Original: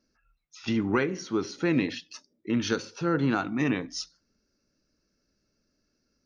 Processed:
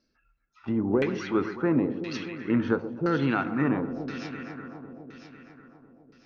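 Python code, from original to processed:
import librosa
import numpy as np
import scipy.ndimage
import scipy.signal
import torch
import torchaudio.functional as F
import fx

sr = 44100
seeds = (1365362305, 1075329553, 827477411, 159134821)

y = fx.echo_alternate(x, sr, ms=125, hz=1200.0, feedback_pct=85, wet_db=-12.5)
y = fx.rider(y, sr, range_db=3, speed_s=0.5)
y = fx.filter_lfo_lowpass(y, sr, shape='saw_down', hz=0.98, low_hz=530.0, high_hz=4600.0, q=1.6)
y = y * 10.0 ** (1.5 / 20.0)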